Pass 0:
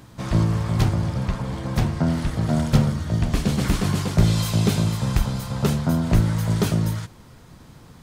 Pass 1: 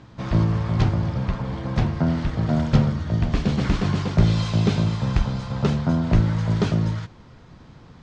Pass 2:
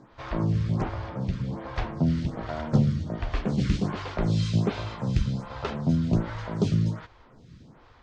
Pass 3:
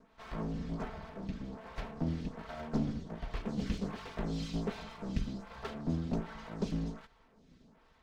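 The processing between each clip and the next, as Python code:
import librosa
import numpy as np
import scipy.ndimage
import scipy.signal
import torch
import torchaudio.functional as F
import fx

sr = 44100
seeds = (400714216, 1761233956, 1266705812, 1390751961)

y1 = scipy.signal.sosfilt(scipy.signal.bessel(8, 4100.0, 'lowpass', norm='mag', fs=sr, output='sos'), x)
y2 = fx.stagger_phaser(y1, sr, hz=1.3)
y2 = y2 * librosa.db_to_amplitude(-1.5)
y3 = fx.lower_of_two(y2, sr, delay_ms=4.5)
y3 = y3 * librosa.db_to_amplitude(-9.0)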